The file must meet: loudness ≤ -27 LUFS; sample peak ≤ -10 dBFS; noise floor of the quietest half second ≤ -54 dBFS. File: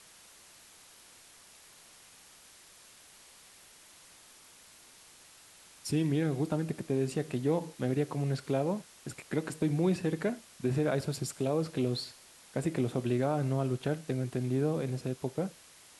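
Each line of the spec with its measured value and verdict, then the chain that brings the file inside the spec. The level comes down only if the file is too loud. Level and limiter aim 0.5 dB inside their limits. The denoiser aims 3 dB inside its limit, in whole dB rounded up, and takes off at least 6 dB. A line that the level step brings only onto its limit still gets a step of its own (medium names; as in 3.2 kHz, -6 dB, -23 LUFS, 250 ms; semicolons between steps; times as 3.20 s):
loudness -32.5 LUFS: pass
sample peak -17.5 dBFS: pass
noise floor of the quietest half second -57 dBFS: pass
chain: none needed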